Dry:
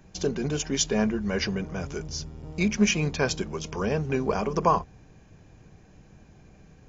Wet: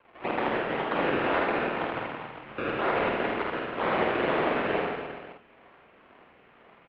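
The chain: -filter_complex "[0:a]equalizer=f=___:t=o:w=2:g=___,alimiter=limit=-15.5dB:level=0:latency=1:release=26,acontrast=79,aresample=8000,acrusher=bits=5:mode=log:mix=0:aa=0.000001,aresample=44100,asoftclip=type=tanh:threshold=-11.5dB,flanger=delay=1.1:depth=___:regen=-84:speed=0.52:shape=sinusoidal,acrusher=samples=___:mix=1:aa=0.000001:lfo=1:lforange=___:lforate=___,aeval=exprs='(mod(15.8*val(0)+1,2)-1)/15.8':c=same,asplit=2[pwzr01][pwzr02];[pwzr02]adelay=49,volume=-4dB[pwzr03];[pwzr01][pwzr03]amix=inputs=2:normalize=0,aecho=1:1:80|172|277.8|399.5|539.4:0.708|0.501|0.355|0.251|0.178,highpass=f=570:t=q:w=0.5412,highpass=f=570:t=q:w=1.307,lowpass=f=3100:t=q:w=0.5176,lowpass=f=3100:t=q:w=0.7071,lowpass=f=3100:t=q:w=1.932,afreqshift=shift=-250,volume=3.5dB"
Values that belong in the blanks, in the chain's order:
1500, -9.5, 4.1, 27, 27, 2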